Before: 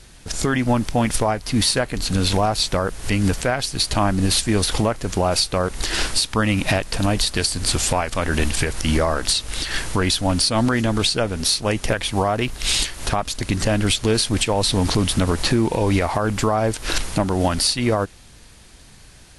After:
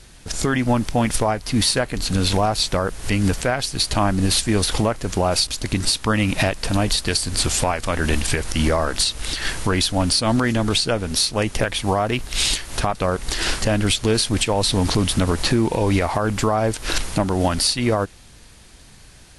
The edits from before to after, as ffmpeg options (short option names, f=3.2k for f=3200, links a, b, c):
-filter_complex "[0:a]asplit=5[a][b][c][d][e];[a]atrim=end=5.472[f];[b]atrim=start=13.238:end=13.622[g];[c]atrim=start=6.138:end=13.242[h];[d]atrim=start=5.468:end=6.142[i];[e]atrim=start=13.618[j];[f][g]acrossfade=d=0.004:c1=hsin:c2=hsin[k];[k][h]acrossfade=d=0.004:c1=hsin:c2=hsin[l];[l][i]acrossfade=d=0.004:c1=hsin:c2=hsin[m];[m][j]acrossfade=d=0.004:c1=hsin:c2=hsin"